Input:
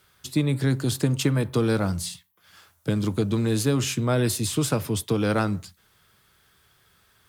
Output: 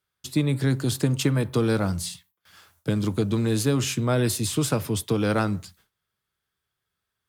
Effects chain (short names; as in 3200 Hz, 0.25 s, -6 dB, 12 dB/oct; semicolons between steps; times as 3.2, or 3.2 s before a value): gate with hold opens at -48 dBFS